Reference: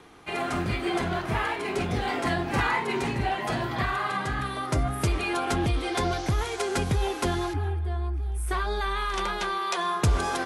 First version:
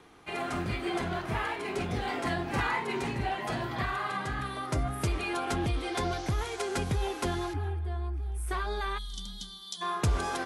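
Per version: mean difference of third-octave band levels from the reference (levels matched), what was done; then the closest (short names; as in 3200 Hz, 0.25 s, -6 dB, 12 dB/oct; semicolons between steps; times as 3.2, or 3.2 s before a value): 1.0 dB: spectral gain 8.98–9.82, 300–3000 Hz -26 dB; gain -4.5 dB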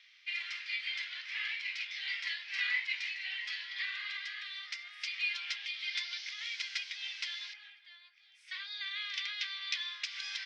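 22.0 dB: elliptic band-pass 2000–5300 Hz, stop band 80 dB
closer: first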